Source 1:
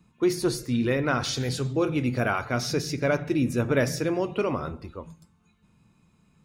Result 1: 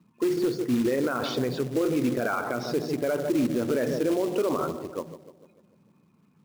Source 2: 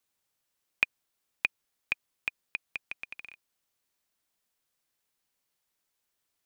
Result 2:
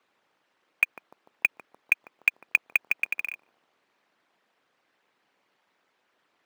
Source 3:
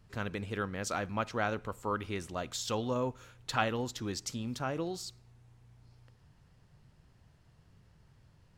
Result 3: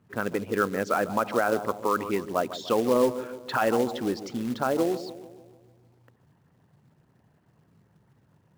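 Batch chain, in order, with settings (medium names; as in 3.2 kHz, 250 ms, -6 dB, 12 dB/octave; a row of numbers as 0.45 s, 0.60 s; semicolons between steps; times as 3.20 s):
resonances exaggerated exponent 1.5; band-pass 240–2200 Hz; on a send: bucket-brigade echo 148 ms, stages 1024, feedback 54%, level -13 dB; on the sum: short-mantissa float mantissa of 2-bit; peak limiter -24 dBFS; normalise loudness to -27 LUFS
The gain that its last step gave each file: +6.5 dB, +18.0 dB, +11.5 dB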